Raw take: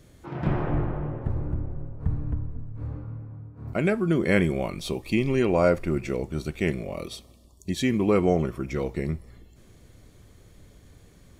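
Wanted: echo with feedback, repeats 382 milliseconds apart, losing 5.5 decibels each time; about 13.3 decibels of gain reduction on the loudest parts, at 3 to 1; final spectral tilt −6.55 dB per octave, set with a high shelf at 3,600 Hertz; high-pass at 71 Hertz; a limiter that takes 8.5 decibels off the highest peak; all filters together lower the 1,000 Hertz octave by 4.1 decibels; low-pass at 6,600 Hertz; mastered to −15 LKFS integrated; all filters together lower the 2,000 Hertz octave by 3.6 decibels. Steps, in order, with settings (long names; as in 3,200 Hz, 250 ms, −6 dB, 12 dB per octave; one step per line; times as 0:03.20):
high-pass filter 71 Hz
low-pass filter 6,600 Hz
parametric band 1,000 Hz −5.5 dB
parametric band 2,000 Hz −5 dB
high-shelf EQ 3,600 Hz +7.5 dB
downward compressor 3 to 1, threshold −36 dBFS
brickwall limiter −31.5 dBFS
repeating echo 382 ms, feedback 53%, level −5.5 dB
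level +25.5 dB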